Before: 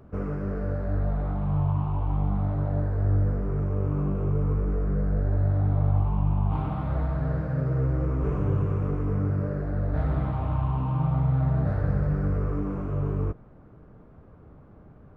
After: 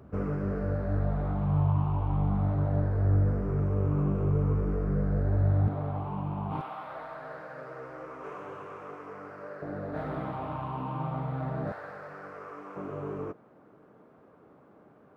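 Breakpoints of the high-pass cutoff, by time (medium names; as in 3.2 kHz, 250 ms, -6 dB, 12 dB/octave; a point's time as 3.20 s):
61 Hz
from 5.68 s 200 Hz
from 6.61 s 720 Hz
from 9.62 s 250 Hz
from 11.72 s 780 Hz
from 12.76 s 290 Hz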